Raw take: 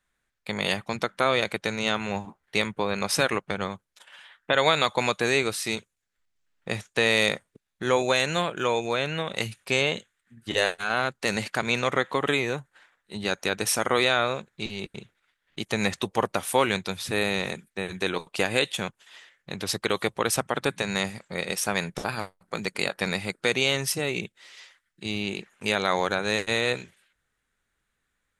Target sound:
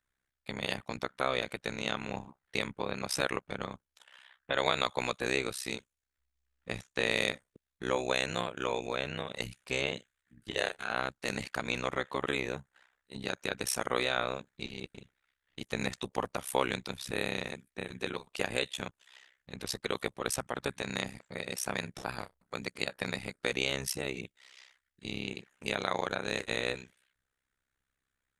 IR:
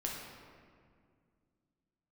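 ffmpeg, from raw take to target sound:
-af "tremolo=f=65:d=1,volume=-4dB"

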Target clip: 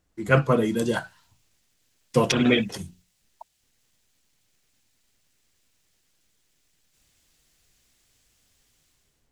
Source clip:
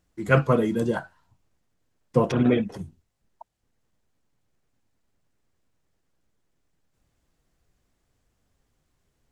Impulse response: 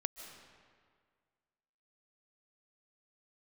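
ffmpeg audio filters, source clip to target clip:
-filter_complex "[0:a]bandreject=f=60:t=h:w=6,bandreject=f=120:t=h:w=6,bandreject=f=180:t=h:w=6,acrossover=split=2200[a][b];[b]dynaudnorm=f=590:g=3:m=15dB[c];[a][c]amix=inputs=2:normalize=0"

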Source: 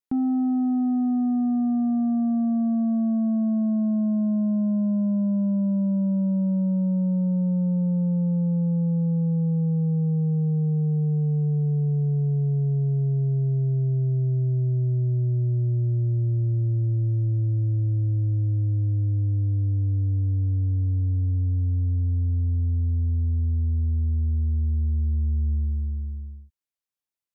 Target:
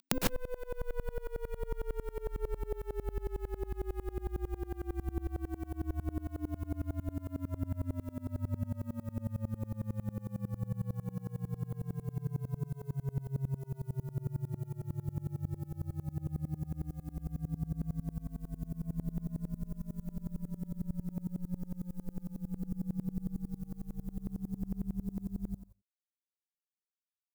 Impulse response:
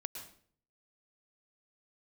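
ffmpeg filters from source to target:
-filter_complex "[0:a]acompressor=mode=upward:threshold=-26dB:ratio=2.5,crystalizer=i=7:c=0,acrusher=bits=2:mix=0:aa=0.5,afreqshift=-270,asplit=2[a][b];[1:a]atrim=start_sample=2205,afade=t=out:st=0.22:d=0.01,atrim=end_sample=10143[c];[b][c]afir=irnorm=-1:irlink=0,volume=5.5dB[d];[a][d]amix=inputs=2:normalize=0,aeval=exprs='val(0)*pow(10,-27*if(lt(mod(-11*n/s,1),2*abs(-11)/1000),1-mod(-11*n/s,1)/(2*abs(-11)/1000),(mod(-11*n/s,1)-2*abs(-11)/1000)/(1-2*abs(-11)/1000))/20)':c=same,volume=13dB"

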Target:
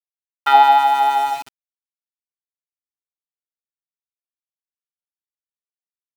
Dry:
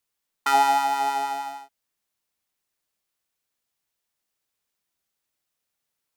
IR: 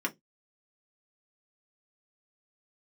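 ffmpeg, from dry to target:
-af "agate=range=-11dB:threshold=-28dB:ratio=16:detection=peak,highpass=370,equalizer=f=800:t=q:w=4:g=6,equalizer=f=1.5k:t=q:w=4:g=3,equalizer=f=3.5k:t=q:w=4:g=9,lowpass=f=3.6k:w=0.5412,lowpass=f=3.6k:w=1.3066,aeval=exprs='val(0)*gte(abs(val(0)),0.0224)':c=same,volume=3.5dB"

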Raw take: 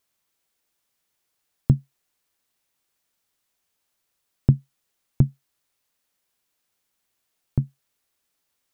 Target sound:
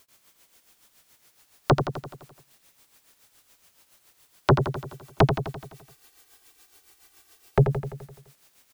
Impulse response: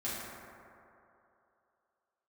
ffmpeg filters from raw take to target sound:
-filter_complex "[0:a]tremolo=f=7.1:d=0.96,asplit=2[a][b];[b]acompressor=threshold=-28dB:ratio=6,volume=0dB[c];[a][c]amix=inputs=2:normalize=0,asplit=3[d][e][f];[d]afade=t=out:st=4.5:d=0.02[g];[e]aecho=1:1:2.6:0.98,afade=t=in:st=4.5:d=0.02,afade=t=out:st=7.63:d=0.02[h];[f]afade=t=in:st=7.63:d=0.02[i];[g][h][i]amix=inputs=3:normalize=0,aeval=exprs='0.708*sin(PI/2*7.94*val(0)/0.708)':c=same,asplit=2[j][k];[k]aecho=0:1:85|170|255|340|425|510|595|680:0.422|0.249|0.147|0.0866|0.0511|0.0301|0.0178|0.0105[l];[j][l]amix=inputs=2:normalize=0,volume=-8.5dB"

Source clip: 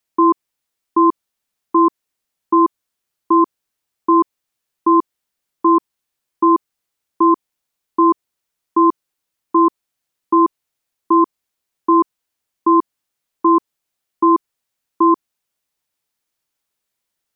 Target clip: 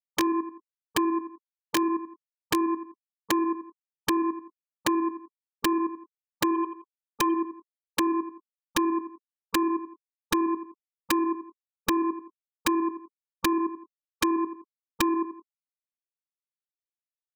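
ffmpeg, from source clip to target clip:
-filter_complex "[0:a]asplit=3[a][b][c];[a]afade=t=out:st=6.54:d=0.02[d];[b]equalizer=f=125:t=o:w=1:g=-8,equalizer=f=250:t=o:w=1:g=-4,equalizer=f=500:t=o:w=1:g=5,equalizer=f=1k:t=o:w=1:g=6,afade=t=in:st=6.54:d=0.02,afade=t=out:st=7.25:d=0.02[e];[c]afade=t=in:st=7.25:d=0.02[f];[d][e][f]amix=inputs=3:normalize=0,asplit=2[g][h];[h]acontrast=67,volume=0dB[i];[g][i]amix=inputs=2:normalize=0,alimiter=limit=-2dB:level=0:latency=1:release=12,equalizer=f=880:w=1:g=-5.5,asplit=2[j][k];[k]adelay=21,volume=-9dB[l];[j][l]amix=inputs=2:normalize=0,afftfilt=real='re*gte(hypot(re,im),0.158)':imag='im*gte(hypot(re,im),0.158)':win_size=1024:overlap=0.75,aecho=1:1:85|170|255:0.668|0.12|0.0217,acompressor=threshold=-22dB:ratio=16,aeval=exprs='(mod(6.68*val(0)+1,2)-1)/6.68':c=same"

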